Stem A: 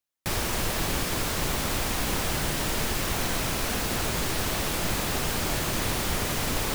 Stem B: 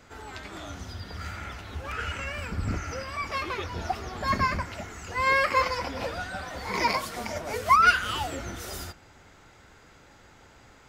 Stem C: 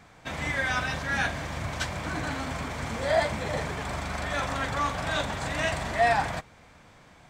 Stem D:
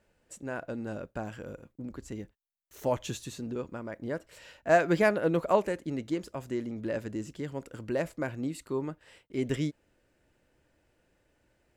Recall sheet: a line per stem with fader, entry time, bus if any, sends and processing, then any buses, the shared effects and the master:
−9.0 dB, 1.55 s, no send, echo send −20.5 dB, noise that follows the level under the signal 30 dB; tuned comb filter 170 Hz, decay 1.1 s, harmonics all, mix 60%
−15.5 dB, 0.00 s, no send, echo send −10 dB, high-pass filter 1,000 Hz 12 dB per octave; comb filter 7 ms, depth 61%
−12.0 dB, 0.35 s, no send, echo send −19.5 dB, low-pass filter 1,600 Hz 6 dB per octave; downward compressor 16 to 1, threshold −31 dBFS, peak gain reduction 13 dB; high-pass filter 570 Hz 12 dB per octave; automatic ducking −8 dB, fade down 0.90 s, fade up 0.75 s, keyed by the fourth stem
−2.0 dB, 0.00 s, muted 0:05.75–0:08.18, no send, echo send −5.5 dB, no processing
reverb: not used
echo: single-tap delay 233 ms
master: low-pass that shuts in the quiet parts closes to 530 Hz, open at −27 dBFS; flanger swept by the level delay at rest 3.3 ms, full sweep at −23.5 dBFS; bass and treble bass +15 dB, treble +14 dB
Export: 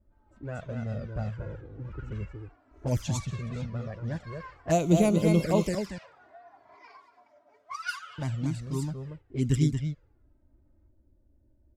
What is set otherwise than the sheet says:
stem A: muted
stem C: missing low-pass filter 1,600 Hz 6 dB per octave

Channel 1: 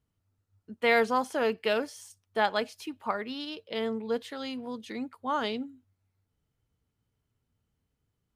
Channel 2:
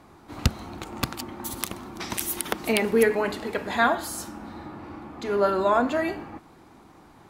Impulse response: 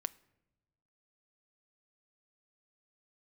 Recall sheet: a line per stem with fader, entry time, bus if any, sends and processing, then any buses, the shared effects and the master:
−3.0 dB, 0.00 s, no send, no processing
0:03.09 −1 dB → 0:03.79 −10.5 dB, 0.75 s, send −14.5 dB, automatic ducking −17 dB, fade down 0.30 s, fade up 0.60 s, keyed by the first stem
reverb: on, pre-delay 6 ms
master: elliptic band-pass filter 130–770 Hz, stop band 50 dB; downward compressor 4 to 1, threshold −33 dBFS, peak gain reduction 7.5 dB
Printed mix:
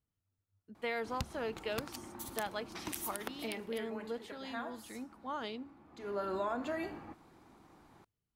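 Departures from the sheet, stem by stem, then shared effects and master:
stem 1 −3.0 dB → −9.5 dB
master: missing elliptic band-pass filter 130–770 Hz, stop band 50 dB

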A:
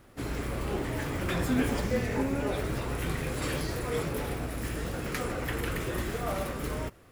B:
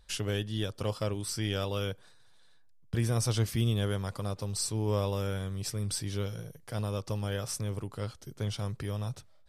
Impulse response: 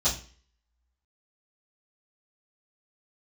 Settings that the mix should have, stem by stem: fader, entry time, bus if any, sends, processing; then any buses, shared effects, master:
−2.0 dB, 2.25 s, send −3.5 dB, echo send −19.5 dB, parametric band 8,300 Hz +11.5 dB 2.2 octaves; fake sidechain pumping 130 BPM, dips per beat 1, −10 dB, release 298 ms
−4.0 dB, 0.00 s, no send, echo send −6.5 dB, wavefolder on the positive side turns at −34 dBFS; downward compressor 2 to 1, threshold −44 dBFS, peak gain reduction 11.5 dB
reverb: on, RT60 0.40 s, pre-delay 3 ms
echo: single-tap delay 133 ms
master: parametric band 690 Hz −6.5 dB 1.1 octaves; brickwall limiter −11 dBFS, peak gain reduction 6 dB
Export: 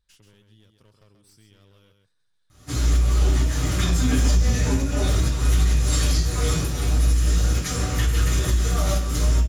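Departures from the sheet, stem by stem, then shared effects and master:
stem A: entry 2.25 s → 2.50 s
stem B −4.0 dB → −14.0 dB

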